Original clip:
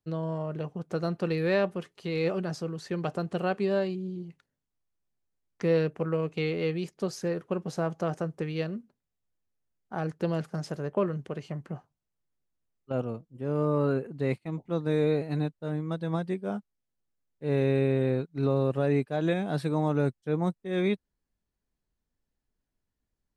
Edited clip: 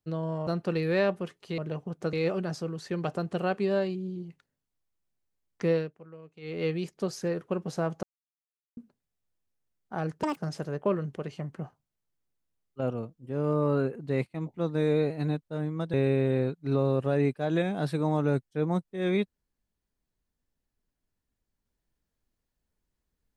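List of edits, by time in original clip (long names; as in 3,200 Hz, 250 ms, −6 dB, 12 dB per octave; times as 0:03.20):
0:00.47–0:01.02: move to 0:02.13
0:05.69–0:06.65: duck −19 dB, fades 0.24 s
0:08.03–0:08.77: silence
0:10.23–0:10.48: play speed 183%
0:16.05–0:17.65: remove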